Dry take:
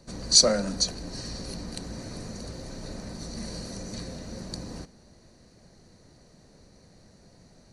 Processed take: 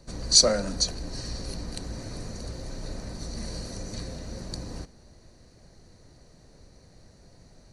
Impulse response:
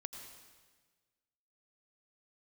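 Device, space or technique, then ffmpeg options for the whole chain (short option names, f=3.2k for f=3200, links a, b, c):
low shelf boost with a cut just above: -af "lowshelf=f=84:g=7.5,equalizer=f=200:t=o:w=0.55:g=-4.5"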